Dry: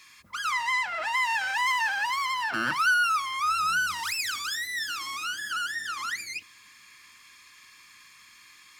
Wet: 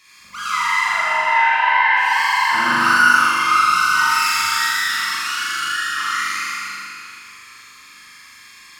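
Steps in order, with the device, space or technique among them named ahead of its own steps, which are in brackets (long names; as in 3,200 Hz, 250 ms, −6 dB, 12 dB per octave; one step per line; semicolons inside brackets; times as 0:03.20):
0:00.94–0:01.97: inverse Chebyshev low-pass filter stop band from 9,300 Hz, stop band 60 dB
tunnel (flutter between parallel walls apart 7.1 metres, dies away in 1.4 s; convolution reverb RT60 2.9 s, pre-delay 15 ms, DRR −6.5 dB)
level −1 dB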